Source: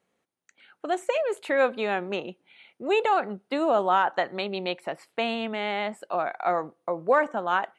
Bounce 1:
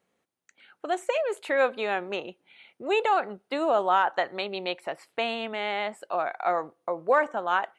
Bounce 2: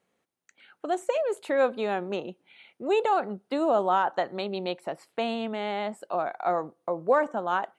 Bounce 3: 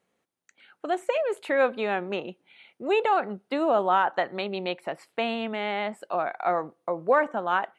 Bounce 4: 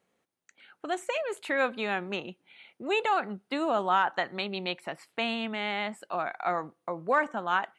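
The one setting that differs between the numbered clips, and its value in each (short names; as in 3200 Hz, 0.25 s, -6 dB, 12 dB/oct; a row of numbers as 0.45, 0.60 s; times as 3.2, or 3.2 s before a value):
dynamic EQ, frequency: 190, 2200, 6800, 520 Hz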